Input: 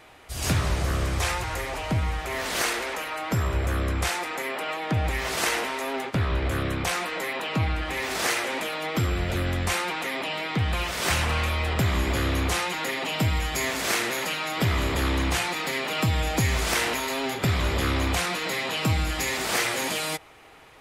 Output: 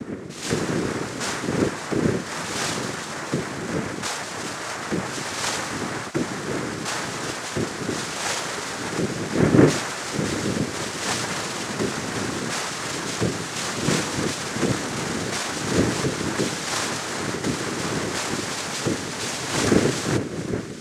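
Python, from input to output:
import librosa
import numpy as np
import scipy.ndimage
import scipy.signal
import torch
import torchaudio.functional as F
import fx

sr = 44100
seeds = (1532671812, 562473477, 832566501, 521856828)

y = fx.dmg_wind(x, sr, seeds[0], corner_hz=180.0, level_db=-26.0)
y = fx.noise_vocoder(y, sr, seeds[1], bands=3)
y = fx.echo_wet_highpass(y, sr, ms=814, feedback_pct=78, hz=1600.0, wet_db=-17.0)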